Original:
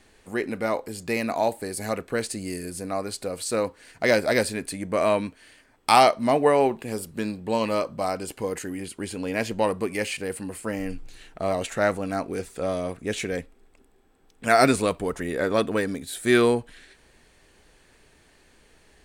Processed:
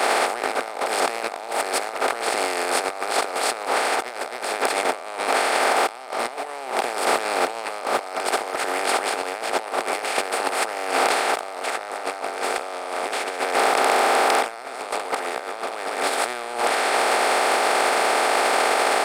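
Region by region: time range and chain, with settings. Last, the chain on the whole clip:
11.77–16.54 high shelf 6000 Hz -5 dB + echo 0.147 s -12.5 dB
whole clip: per-bin compression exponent 0.2; HPF 560 Hz 12 dB/oct; negative-ratio compressor -21 dBFS, ratio -0.5; gain -2 dB

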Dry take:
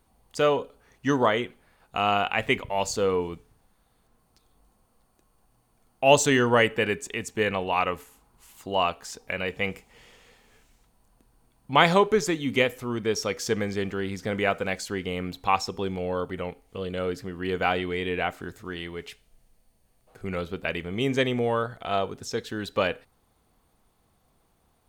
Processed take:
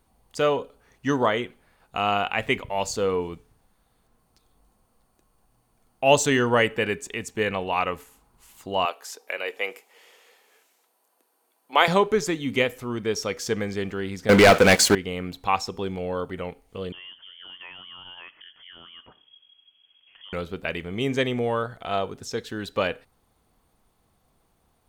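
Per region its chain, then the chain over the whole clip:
8.85–11.88 HPF 360 Hz 24 dB/oct + bell 12000 Hz +9 dB 0.3 oct
14.29–14.95 low shelf 91 Hz -11.5 dB + sample leveller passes 5
16.92–20.33 compressor 2.5:1, threshold -48 dBFS + inverted band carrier 3300 Hz + mismatched tape noise reduction encoder only
whole clip: dry

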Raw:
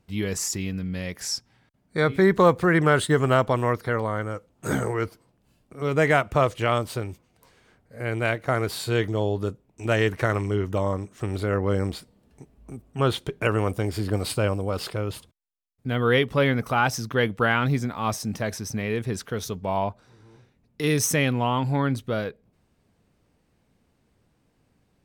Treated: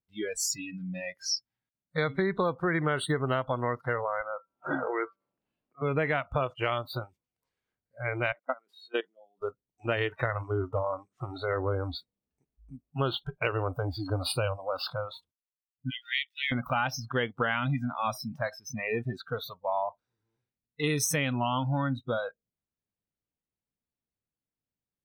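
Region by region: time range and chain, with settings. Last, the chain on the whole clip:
4.21–5.82 three-band isolator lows -13 dB, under 190 Hz, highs -24 dB, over 3800 Hz + de-hum 193.5 Hz, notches 8 + upward compressor, threshold -43 dBFS
8.32–9.42 expander -40 dBFS + elliptic high-pass 190 Hz + level quantiser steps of 23 dB
15.9–16.52 half-wave gain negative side -7 dB + steep high-pass 1900 Hz 48 dB/oct
whole clip: bell 3100 Hz +3 dB 2.4 oct; spectral noise reduction 29 dB; compressor 5:1, threshold -24 dBFS; gain -1 dB

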